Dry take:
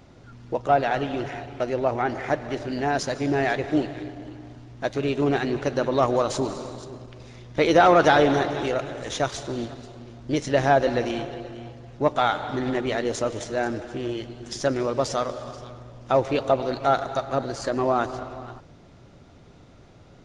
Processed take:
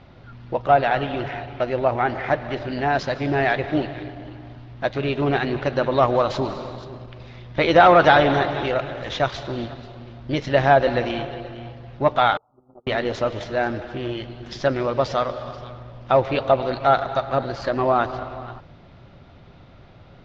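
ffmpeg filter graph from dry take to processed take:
ffmpeg -i in.wav -filter_complex "[0:a]asettb=1/sr,asplit=3[link_01][link_02][link_03];[link_01]atrim=end=12.374[link_04];[link_02]atrim=start=12.37:end=12.87,asetpts=PTS-STARTPTS,afade=type=in:duration=0.004:curve=qsin,afade=type=out:start_time=0.496:duration=0.004:curve=qsin,agate=range=-36dB:threshold=-22dB:ratio=16:release=100:detection=peak,acompressor=threshold=-53dB:ratio=1.5:attack=3.2:release=140:knee=1:detection=peak,asuperstop=centerf=3300:order=20:qfactor=0.5[link_05];[link_03]atrim=start=12.866[link_06];[link_04][link_05]acrossfade=duration=0.004:curve1=hsin:curve2=qsin[link_07];[link_07][link_06]acrossfade=duration=0.004:curve1=qsin:curve2=hsin,lowpass=frequency=4200:width=0.5412,lowpass=frequency=4200:width=1.3066,equalizer=frequency=300:width_type=o:width=0.99:gain=-5,bandreject=frequency=450:width=12,volume=4.5dB" out.wav

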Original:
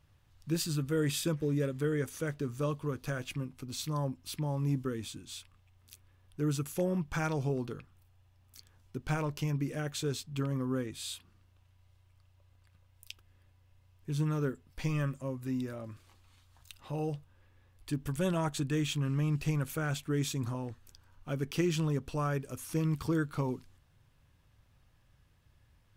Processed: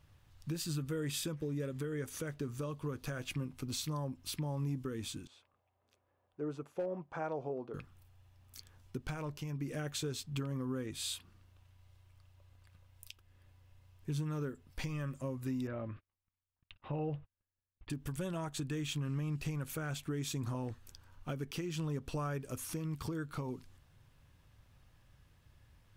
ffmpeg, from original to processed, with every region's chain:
ffmpeg -i in.wav -filter_complex "[0:a]asettb=1/sr,asplit=3[link_01][link_02][link_03];[link_01]atrim=end=5.274[link_04];[link_02]atrim=start=5.27:end=7.74,asetpts=PTS-STARTPTS,afade=type=in:duration=0.004:curve=qsin,afade=type=out:start_time=2.466:duration=0.004:curve=qsin,bandpass=frequency=620:width_type=q:width=1.6,asoftclip=type=hard:threshold=-28.5dB[link_05];[link_03]atrim=start=7.736[link_06];[link_04][link_05]acrossfade=duration=0.004:curve1=hsin:curve2=qsin[link_07];[link_07][link_06]acrossfade=duration=0.004:curve1=qsin:curve2=hsin,asettb=1/sr,asplit=3[link_08][link_09][link_10];[link_08]atrim=end=15.674[link_11];[link_09]atrim=start=15.67:end=17.9,asetpts=PTS-STARTPTS,afade=type=in:duration=0.004:curve=qsin,afade=type=out:start_time=2.226:duration=0.004:curve=qsin,lowpass=frequency=2900:width=0.5412,lowpass=frequency=2900:width=1.3066,agate=range=-35dB:threshold=-57dB:ratio=16:release=100:detection=peak[link_12];[link_10]atrim=start=17.896[link_13];[link_11][link_12]acrossfade=duration=0.004:curve1=hsin:curve2=qsin[link_14];[link_14][link_13]acrossfade=duration=0.004:curve1=qsin:curve2=hsin,acompressor=threshold=-34dB:ratio=6,alimiter=level_in=6dB:limit=-24dB:level=0:latency=1:release=419,volume=-6dB,volume=2dB" out.wav

